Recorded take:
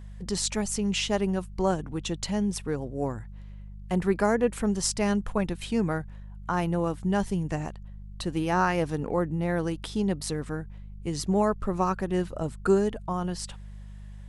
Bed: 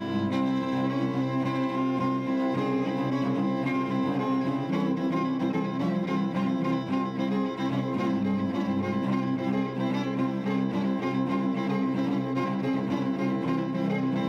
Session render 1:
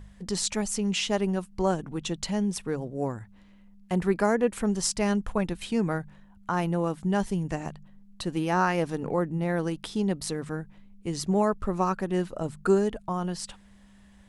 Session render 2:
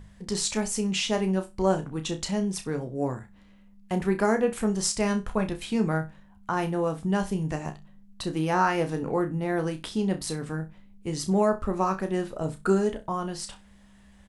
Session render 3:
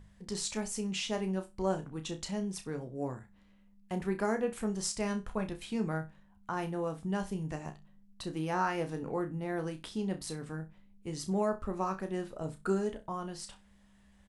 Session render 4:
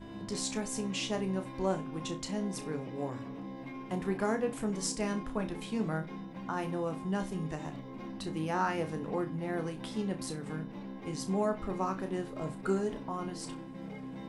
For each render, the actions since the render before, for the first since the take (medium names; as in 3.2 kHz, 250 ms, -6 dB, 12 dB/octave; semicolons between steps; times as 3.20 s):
de-hum 50 Hz, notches 3
doubling 14 ms -12 dB; on a send: flutter echo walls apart 5.4 m, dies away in 0.22 s
trim -8 dB
add bed -16 dB